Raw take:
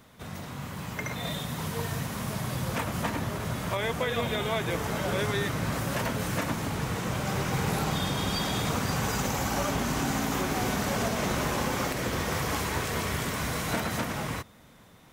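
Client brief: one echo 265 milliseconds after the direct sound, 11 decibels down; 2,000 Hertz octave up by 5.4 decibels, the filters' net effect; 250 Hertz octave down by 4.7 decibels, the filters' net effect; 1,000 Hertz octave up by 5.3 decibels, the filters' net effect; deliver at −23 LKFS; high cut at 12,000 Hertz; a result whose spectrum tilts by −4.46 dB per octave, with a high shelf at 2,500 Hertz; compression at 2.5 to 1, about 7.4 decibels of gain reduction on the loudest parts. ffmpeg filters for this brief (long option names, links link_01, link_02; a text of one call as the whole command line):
ffmpeg -i in.wav -af "lowpass=12000,equalizer=frequency=250:width_type=o:gain=-7,equalizer=frequency=1000:width_type=o:gain=6,equalizer=frequency=2000:width_type=o:gain=7.5,highshelf=frequency=2500:gain=-6,acompressor=threshold=-34dB:ratio=2.5,aecho=1:1:265:0.282,volume=11dB" out.wav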